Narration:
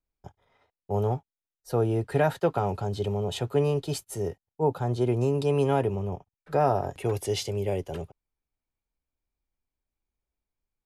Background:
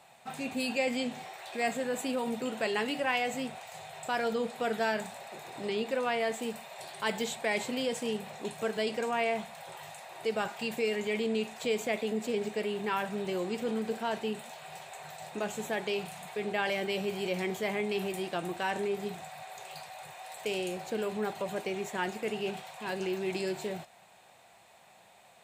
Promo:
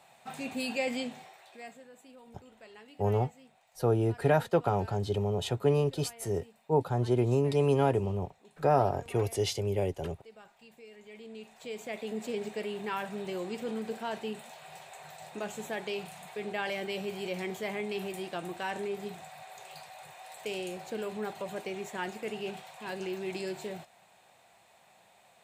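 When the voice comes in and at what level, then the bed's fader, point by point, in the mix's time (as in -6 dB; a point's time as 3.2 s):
2.10 s, -1.5 dB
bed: 0.98 s -1.5 dB
1.93 s -21.5 dB
10.87 s -21.5 dB
12.2 s -3 dB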